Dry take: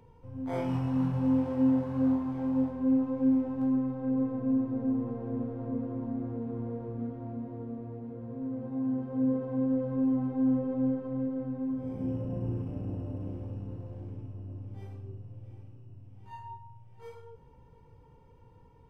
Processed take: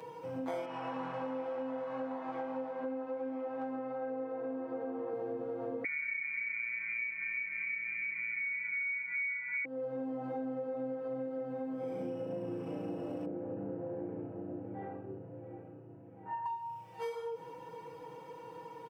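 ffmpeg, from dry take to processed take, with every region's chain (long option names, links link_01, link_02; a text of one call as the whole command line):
ffmpeg -i in.wav -filter_complex "[0:a]asettb=1/sr,asplit=3[link_01][link_02][link_03];[link_01]atrim=end=0.654[link_04];[link_02]atrim=start=0.65:end=5.13,asetpts=PTS-STARTPTS,afade=type=in:duration=0.004:curve=qsin,afade=type=out:start_time=4.476:duration=0.004:curve=qsin,lowpass=1900,aemphasis=mode=production:type=riaa[link_05];[link_03]atrim=start=5.126[link_06];[link_04][link_05]acrossfade=duration=0.004:curve1=hsin:curve2=qsin[link_07];[link_07][link_06]acrossfade=duration=0.004:curve1=qsin:curve2=hsin,asettb=1/sr,asplit=3[link_08][link_09][link_10];[link_08]atrim=end=5.844[link_11];[link_09]atrim=start=5.84:end=9.65,asetpts=PTS-STARTPTS,afade=type=in:duration=0.004:curve=qsin,afade=type=out:start_time=3.806:duration=0.004:curve=qsin,lowpass=frequency=2100:width_type=q:width=0.5098,lowpass=frequency=2100:width_type=q:width=0.6013,lowpass=frequency=2100:width_type=q:width=0.9,lowpass=frequency=2100:width_type=q:width=2.563,afreqshift=-2500,aeval=exprs='val(0)+0.00398*(sin(2*PI*50*n/s)+sin(2*PI*2*50*n/s)/2+sin(2*PI*3*50*n/s)/3+sin(2*PI*4*50*n/s)/4+sin(2*PI*5*50*n/s)/5)':channel_layout=same,asplit=4[link_12][link_13][link_14][link_15];[link_13]adelay=331,afreqshift=140,volume=-17dB[link_16];[link_14]adelay=662,afreqshift=280,volume=-27.2dB[link_17];[link_15]adelay=993,afreqshift=420,volume=-37.3dB[link_18];[link_12][link_16][link_17][link_18]amix=inputs=4:normalize=0,atrim=end_sample=168021[link_19];[link_10]atrim=start=9.646[link_20];[link_11][link_19]acrossfade=duration=0.004:curve1=hsin:curve2=qsin[link_21];[link_21][link_20]acrossfade=duration=0.004:curve1=qsin:curve2=hsin,asettb=1/sr,asplit=3[link_22][link_23][link_24];[link_22]atrim=end=13.254[link_25];[link_23]atrim=start=13.25:end=16.46,asetpts=PTS-STARTPTS,afade=type=in:duration=0.004:curve=qsin,afade=type=out:start_time=3.206:duration=0.004:curve=qsin,lowpass=frequency=1600:width=0.5412,lowpass=frequency=1600:width=1.3066,equalizer=frequency=1100:width_type=o:width=0.43:gain=-10.5[link_26];[link_24]atrim=start=16.456[link_27];[link_25][link_26]acrossfade=duration=0.004:curve1=hsin:curve2=qsin[link_28];[link_28][link_27]acrossfade=duration=0.004:curve1=qsin:curve2=hsin,highpass=380,aecho=1:1:6.2:0.98,acompressor=threshold=-48dB:ratio=10,volume=12.5dB" out.wav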